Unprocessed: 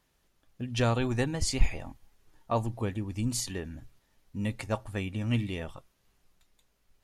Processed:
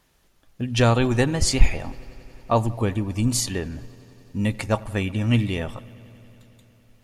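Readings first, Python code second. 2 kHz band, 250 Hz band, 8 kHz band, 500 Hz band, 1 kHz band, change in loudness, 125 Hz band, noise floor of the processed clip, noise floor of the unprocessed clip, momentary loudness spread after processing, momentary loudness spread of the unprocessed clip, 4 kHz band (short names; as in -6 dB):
+8.5 dB, +8.5 dB, +8.5 dB, +8.5 dB, +8.5 dB, +8.5 dB, +8.5 dB, -60 dBFS, -72 dBFS, 15 LU, 15 LU, +8.5 dB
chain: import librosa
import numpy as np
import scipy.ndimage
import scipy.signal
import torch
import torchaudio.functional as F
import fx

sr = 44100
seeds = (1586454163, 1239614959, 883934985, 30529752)

y = fx.echo_wet_lowpass(x, sr, ms=92, feedback_pct=85, hz=3700.0, wet_db=-23.5)
y = y * librosa.db_to_amplitude(8.5)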